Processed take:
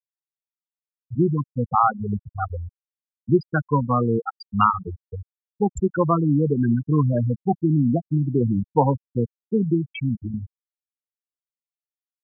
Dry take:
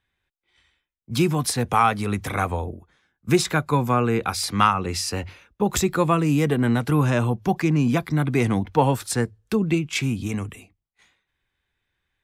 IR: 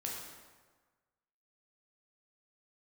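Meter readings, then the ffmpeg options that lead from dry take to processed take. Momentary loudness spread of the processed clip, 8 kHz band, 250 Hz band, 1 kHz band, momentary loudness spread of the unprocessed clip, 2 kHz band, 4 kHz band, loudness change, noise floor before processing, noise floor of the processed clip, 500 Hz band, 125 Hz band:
12 LU, below −20 dB, +0.5 dB, −0.5 dB, 8 LU, −8.0 dB, below −15 dB, 0.0 dB, −80 dBFS, below −85 dBFS, −0.5 dB, +0.5 dB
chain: -af "afftfilt=real='re*gte(hypot(re,im),0.316)':imag='im*gte(hypot(re,im),0.316)':win_size=1024:overlap=0.75,volume=1dB"

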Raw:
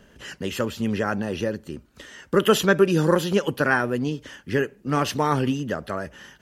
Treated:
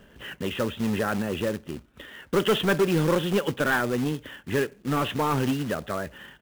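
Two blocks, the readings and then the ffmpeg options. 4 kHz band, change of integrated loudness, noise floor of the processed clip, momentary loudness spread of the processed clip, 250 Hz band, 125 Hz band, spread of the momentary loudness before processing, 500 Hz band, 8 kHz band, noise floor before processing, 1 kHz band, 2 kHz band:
−1.0 dB, −3.0 dB, −56 dBFS, 13 LU, −2.0 dB, −2.0 dB, 16 LU, −3.5 dB, −4.5 dB, −56 dBFS, −3.0 dB, −3.0 dB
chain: -af "aresample=8000,asoftclip=type=tanh:threshold=-17dB,aresample=44100,acrusher=bits=3:mode=log:mix=0:aa=0.000001"

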